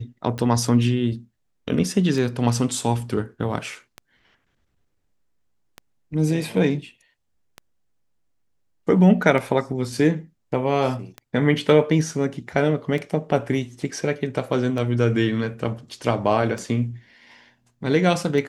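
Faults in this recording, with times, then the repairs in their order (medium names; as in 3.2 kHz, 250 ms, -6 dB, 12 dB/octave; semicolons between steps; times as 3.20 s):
tick 33 1/3 rpm -18 dBFS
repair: de-click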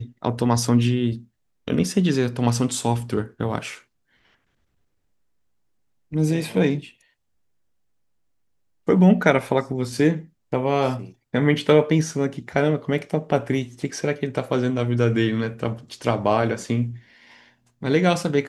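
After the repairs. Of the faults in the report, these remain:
nothing left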